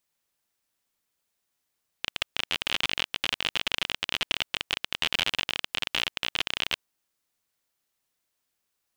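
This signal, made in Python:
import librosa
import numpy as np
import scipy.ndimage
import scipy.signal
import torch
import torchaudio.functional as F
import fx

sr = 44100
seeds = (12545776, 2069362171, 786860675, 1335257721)

y = fx.geiger_clicks(sr, seeds[0], length_s=4.78, per_s=39.0, level_db=-9.0)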